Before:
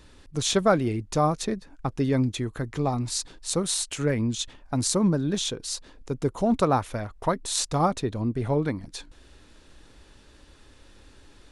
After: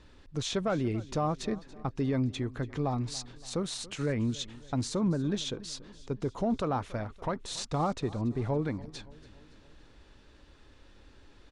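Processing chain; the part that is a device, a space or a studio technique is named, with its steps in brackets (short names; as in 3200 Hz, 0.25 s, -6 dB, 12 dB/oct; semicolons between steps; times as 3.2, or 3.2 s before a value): soft clipper into limiter (soft clip -10.5 dBFS, distortion -25 dB; limiter -18 dBFS, peak gain reduction 6 dB); air absorption 84 m; feedback echo 0.283 s, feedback 53%, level -20 dB; gain -3.5 dB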